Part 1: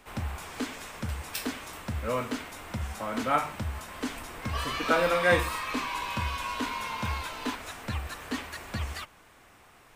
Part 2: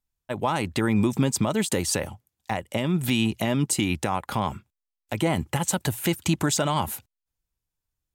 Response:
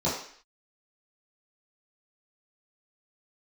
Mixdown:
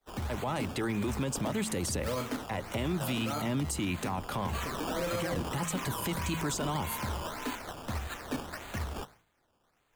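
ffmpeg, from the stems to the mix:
-filter_complex "[0:a]agate=range=-33dB:threshold=-45dB:ratio=3:detection=peak,bandreject=frequency=1100:width=18,acrusher=samples=15:mix=1:aa=0.000001:lfo=1:lforange=15:lforate=1.7,volume=-0.5dB[link_01];[1:a]aphaser=in_gain=1:out_gain=1:delay=2.8:decay=0.27:speed=0.53:type=triangular,volume=-3dB[link_02];[link_01][link_02]amix=inputs=2:normalize=0,bandreject=frequency=54.6:width_type=h:width=4,bandreject=frequency=109.2:width_type=h:width=4,bandreject=frequency=163.8:width_type=h:width=4,bandreject=frequency=218.4:width_type=h:width=4,acrossover=split=180|440[link_03][link_04][link_05];[link_03]acompressor=threshold=-33dB:ratio=4[link_06];[link_04]acompressor=threshold=-31dB:ratio=4[link_07];[link_05]acompressor=threshold=-31dB:ratio=4[link_08];[link_06][link_07][link_08]amix=inputs=3:normalize=0,alimiter=limit=-23.5dB:level=0:latency=1:release=19"

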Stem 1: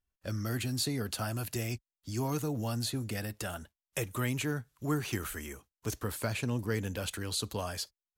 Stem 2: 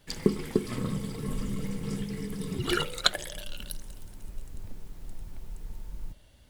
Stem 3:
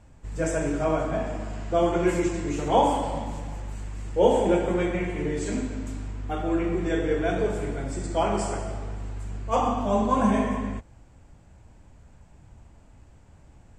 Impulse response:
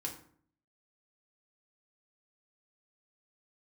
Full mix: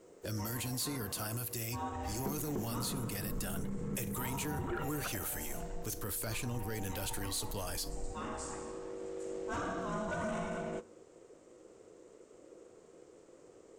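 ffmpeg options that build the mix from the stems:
-filter_complex "[0:a]crystalizer=i=2:c=0,volume=-2.5dB,asplit=3[link_01][link_02][link_03];[link_02]volume=-13.5dB[link_04];[1:a]lowpass=frequency=1700:width=0.5412,lowpass=frequency=1700:width=1.3066,adelay=2000,volume=-3.5dB[link_05];[2:a]equalizer=frequency=6900:width=0.9:gain=8.5,aeval=exprs='val(0)*sin(2*PI*430*n/s)':channel_layout=same,volume=-5dB,asplit=2[link_06][link_07];[link_07]volume=-13dB[link_08];[link_03]apad=whole_len=608132[link_09];[link_06][link_09]sidechaincompress=threshold=-48dB:ratio=8:attack=33:release=1220[link_10];[3:a]atrim=start_sample=2205[link_11];[link_04][link_08]amix=inputs=2:normalize=0[link_12];[link_12][link_11]afir=irnorm=-1:irlink=0[link_13];[link_01][link_05][link_10][link_13]amix=inputs=4:normalize=0,asoftclip=type=tanh:threshold=-22dB,alimiter=level_in=6dB:limit=-24dB:level=0:latency=1:release=43,volume=-6dB"

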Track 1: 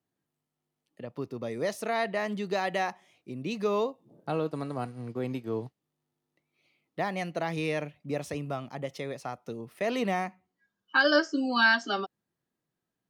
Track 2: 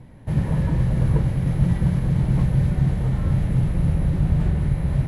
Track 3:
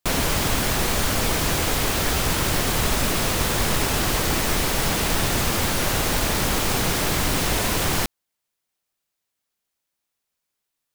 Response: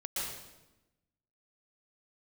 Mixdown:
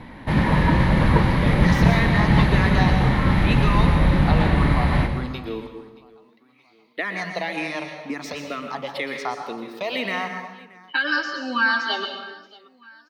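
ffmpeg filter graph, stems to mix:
-filter_complex "[0:a]highshelf=frequency=4900:gain=7,acompressor=threshold=-30dB:ratio=5,asplit=2[link_01][link_02];[link_02]afreqshift=-2[link_03];[link_01][link_03]amix=inputs=2:normalize=1,volume=-1.5dB,asplit=3[link_04][link_05][link_06];[link_05]volume=-4.5dB[link_07];[link_06]volume=-19dB[link_08];[1:a]volume=1dB,asplit=2[link_09][link_10];[link_10]volume=-8.5dB[link_11];[3:a]atrim=start_sample=2205[link_12];[link_07][link_11]amix=inputs=2:normalize=0[link_13];[link_13][link_12]afir=irnorm=-1:irlink=0[link_14];[link_08]aecho=0:1:627|1254|1881|2508|3135|3762|4389:1|0.48|0.23|0.111|0.0531|0.0255|0.0122[link_15];[link_04][link_09][link_14][link_15]amix=inputs=4:normalize=0,equalizer=frequency=125:width_type=o:width=1:gain=-7,equalizer=frequency=250:width_type=o:width=1:gain=8,equalizer=frequency=1000:width_type=o:width=1:gain=11,equalizer=frequency=2000:width_type=o:width=1:gain=10,equalizer=frequency=4000:width_type=o:width=1:gain=11,equalizer=frequency=8000:width_type=o:width=1:gain=-4"

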